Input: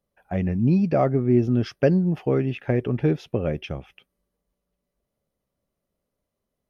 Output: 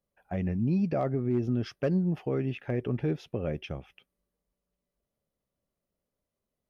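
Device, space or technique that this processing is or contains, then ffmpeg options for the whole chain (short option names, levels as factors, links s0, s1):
clipper into limiter: -af "asoftclip=type=hard:threshold=0.299,alimiter=limit=0.188:level=0:latency=1:release=89,volume=0.531"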